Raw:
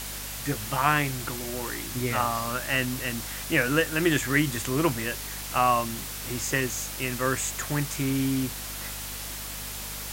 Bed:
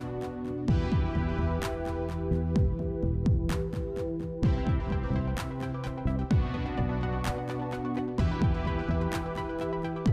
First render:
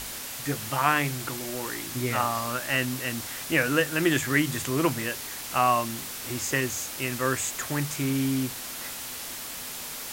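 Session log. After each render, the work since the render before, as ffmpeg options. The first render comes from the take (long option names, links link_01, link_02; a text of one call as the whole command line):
ffmpeg -i in.wav -af "bandreject=frequency=50:width_type=h:width=4,bandreject=frequency=100:width_type=h:width=4,bandreject=frequency=150:width_type=h:width=4,bandreject=frequency=200:width_type=h:width=4" out.wav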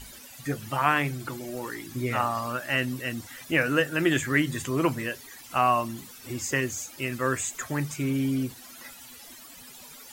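ffmpeg -i in.wav -af "afftdn=noise_reduction=15:noise_floor=-37" out.wav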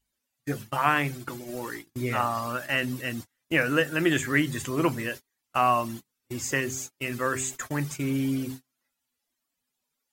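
ffmpeg -i in.wav -af "bandreject=frequency=130.5:width_type=h:width=4,bandreject=frequency=261:width_type=h:width=4,bandreject=frequency=391.5:width_type=h:width=4,agate=range=-36dB:threshold=-36dB:ratio=16:detection=peak" out.wav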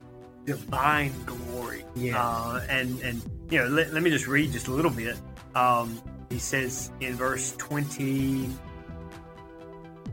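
ffmpeg -i in.wav -i bed.wav -filter_complex "[1:a]volume=-12.5dB[link_01];[0:a][link_01]amix=inputs=2:normalize=0" out.wav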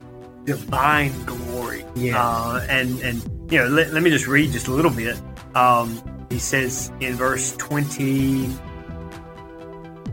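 ffmpeg -i in.wav -af "volume=7dB,alimiter=limit=-2dB:level=0:latency=1" out.wav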